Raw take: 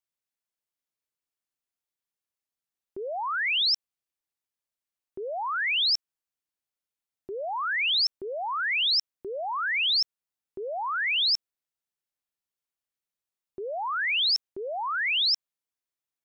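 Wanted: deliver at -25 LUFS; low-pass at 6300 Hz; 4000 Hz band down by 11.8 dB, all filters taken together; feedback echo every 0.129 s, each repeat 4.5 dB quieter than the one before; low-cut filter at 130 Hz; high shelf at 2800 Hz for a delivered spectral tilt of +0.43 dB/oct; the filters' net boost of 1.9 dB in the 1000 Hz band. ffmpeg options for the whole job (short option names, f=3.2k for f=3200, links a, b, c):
-af "highpass=130,lowpass=6.3k,equalizer=f=1k:t=o:g=4,highshelf=f=2.8k:g=-7.5,equalizer=f=4k:t=o:g=-8.5,aecho=1:1:129|258|387|516|645|774|903|1032|1161:0.596|0.357|0.214|0.129|0.0772|0.0463|0.0278|0.0167|0.01,volume=4.5dB"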